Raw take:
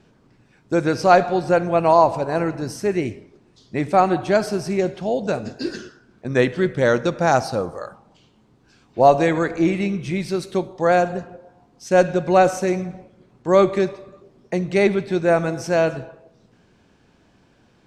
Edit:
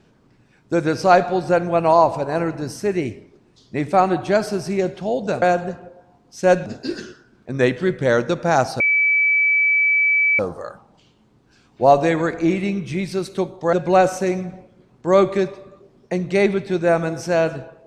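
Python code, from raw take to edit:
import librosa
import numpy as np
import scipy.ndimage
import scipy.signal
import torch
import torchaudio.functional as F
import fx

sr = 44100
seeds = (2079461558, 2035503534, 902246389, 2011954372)

y = fx.edit(x, sr, fx.insert_tone(at_s=7.56, length_s=1.59, hz=2300.0, db=-13.5),
    fx.move(start_s=10.9, length_s=1.24, to_s=5.42), tone=tone)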